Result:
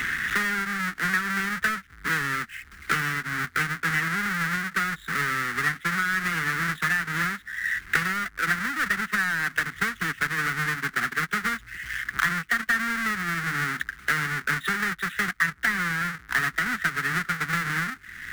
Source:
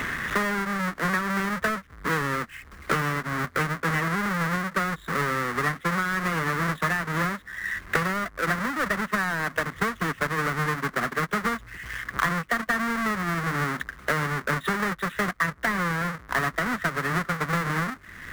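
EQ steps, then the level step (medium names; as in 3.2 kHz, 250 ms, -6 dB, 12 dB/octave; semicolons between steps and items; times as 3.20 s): resonant low shelf 630 Hz -6.5 dB, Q 3; high-order bell 810 Hz -15.5 dB 1.2 oct; +2.5 dB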